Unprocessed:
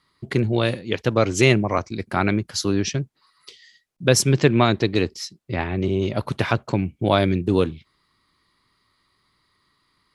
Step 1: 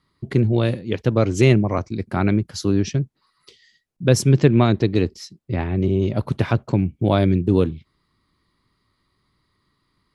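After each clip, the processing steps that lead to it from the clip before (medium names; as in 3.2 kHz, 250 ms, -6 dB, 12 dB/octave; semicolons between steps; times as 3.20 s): bass shelf 500 Hz +10.5 dB; trim -5.5 dB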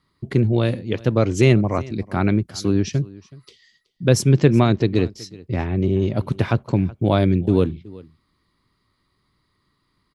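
delay 374 ms -21.5 dB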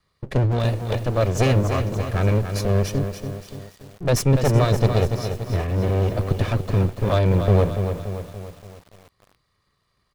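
comb filter that takes the minimum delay 1.7 ms; bit-crushed delay 287 ms, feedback 55%, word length 7-bit, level -7.5 dB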